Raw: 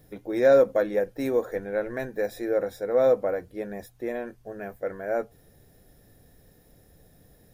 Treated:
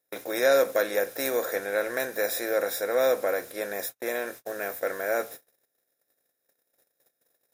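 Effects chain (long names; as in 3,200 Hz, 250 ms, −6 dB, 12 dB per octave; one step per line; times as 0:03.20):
compressor on every frequency bin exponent 0.6
noise gate −37 dBFS, range −39 dB
spectral tilt +4.5 dB per octave
level −1 dB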